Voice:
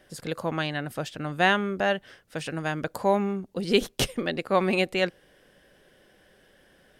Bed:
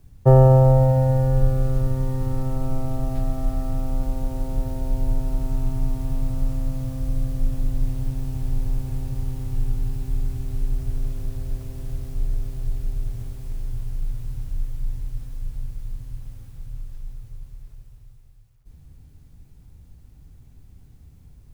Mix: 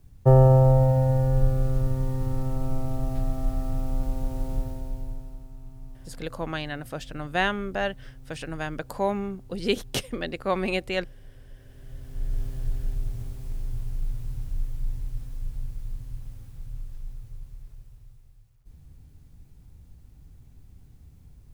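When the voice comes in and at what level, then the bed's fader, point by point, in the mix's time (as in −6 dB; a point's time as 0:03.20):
5.95 s, −3.0 dB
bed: 0:04.54 −3 dB
0:05.51 −19.5 dB
0:11.53 −19.5 dB
0:12.40 −2.5 dB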